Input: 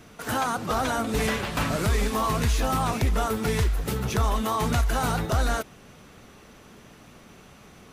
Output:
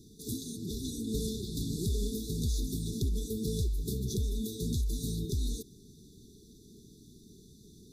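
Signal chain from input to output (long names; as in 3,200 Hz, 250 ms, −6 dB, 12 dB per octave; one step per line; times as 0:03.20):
downward compressor 2 to 1, threshold −26 dBFS, peak gain reduction 4.5 dB
linear-phase brick-wall band-stop 450–3,400 Hz
level −3.5 dB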